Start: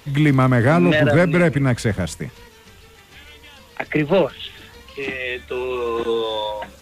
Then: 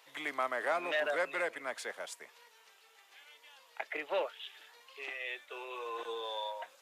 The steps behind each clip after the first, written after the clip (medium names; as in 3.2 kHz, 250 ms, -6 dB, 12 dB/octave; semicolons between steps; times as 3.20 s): ladder high-pass 490 Hz, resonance 20%; trim -8.5 dB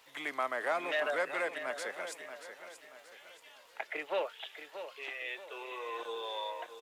crackle 120 per s -54 dBFS; feedback delay 631 ms, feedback 40%, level -10.5 dB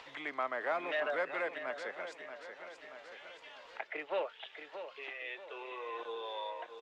upward compressor, threshold -40 dBFS; distance through air 160 m; trim -1 dB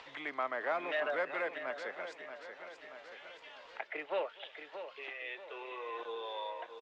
low-pass 7 kHz 12 dB/octave; delay 249 ms -23 dB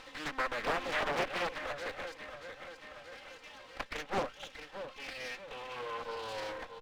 comb filter that takes the minimum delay 3.8 ms; loudspeaker Doppler distortion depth 0.94 ms; trim +3 dB